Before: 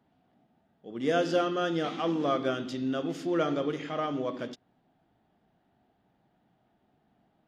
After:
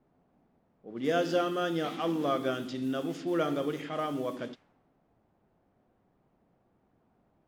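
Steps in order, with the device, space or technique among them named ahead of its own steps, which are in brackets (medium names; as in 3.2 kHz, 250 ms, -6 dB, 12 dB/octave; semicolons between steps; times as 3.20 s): cassette deck with a dynamic noise filter (white noise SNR 25 dB; level-controlled noise filter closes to 570 Hz, open at -28 dBFS); trim -1.5 dB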